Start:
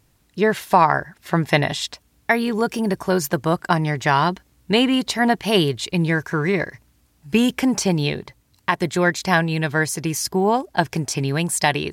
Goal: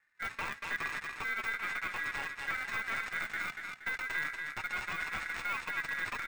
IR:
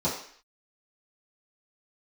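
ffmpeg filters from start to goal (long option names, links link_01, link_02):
-filter_complex "[0:a]atempo=1.9,acrossover=split=410|950[link_01][link_02][link_03];[link_03]acrusher=samples=32:mix=1:aa=0.000001[link_04];[link_01][link_02][link_04]amix=inputs=3:normalize=0,flanger=delay=3:depth=6.4:regen=18:speed=0.3:shape=triangular,aresample=16000,asoftclip=type=hard:threshold=-18dB,aresample=44100,highshelf=frequency=5800:gain=9.5,acrusher=bits=5:mode=log:mix=0:aa=0.000001,aeval=exprs='val(0)*sin(2*PI*1800*n/s)':channel_layout=same,aeval=exprs='0.251*(cos(1*acos(clip(val(0)/0.251,-1,1)))-cos(1*PI/2))+0.0178*(cos(4*acos(clip(val(0)/0.251,-1,1)))-cos(4*PI/2))':channel_layout=same,aecho=1:1:235|470|705|940:0.447|0.161|0.0579|0.0208,deesser=0.8,volume=-7dB"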